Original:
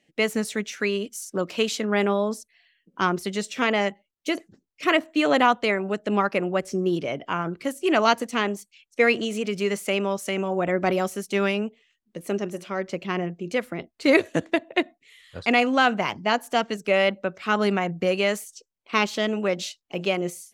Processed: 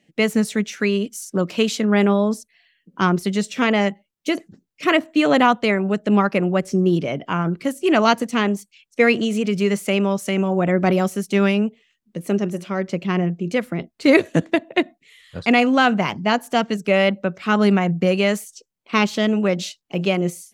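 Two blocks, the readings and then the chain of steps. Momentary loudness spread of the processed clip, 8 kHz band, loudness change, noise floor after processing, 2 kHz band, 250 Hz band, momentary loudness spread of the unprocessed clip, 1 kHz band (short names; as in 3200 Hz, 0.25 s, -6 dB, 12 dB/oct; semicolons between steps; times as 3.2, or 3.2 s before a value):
9 LU, +2.5 dB, +4.5 dB, -74 dBFS, +2.5 dB, +8.0 dB, 10 LU, +3.0 dB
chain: bell 170 Hz +8 dB 1.3 oct; gain +2.5 dB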